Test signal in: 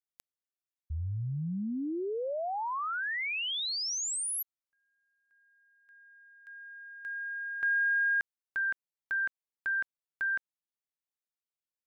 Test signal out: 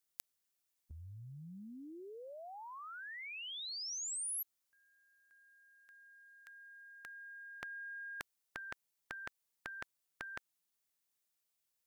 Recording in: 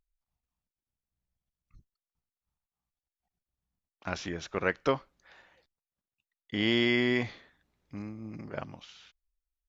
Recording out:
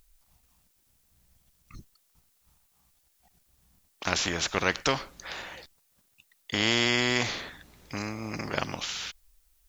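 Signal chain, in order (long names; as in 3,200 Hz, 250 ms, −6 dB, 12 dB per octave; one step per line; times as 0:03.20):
high-shelf EQ 4,600 Hz +8 dB
every bin compressed towards the loudest bin 2 to 1
level +4.5 dB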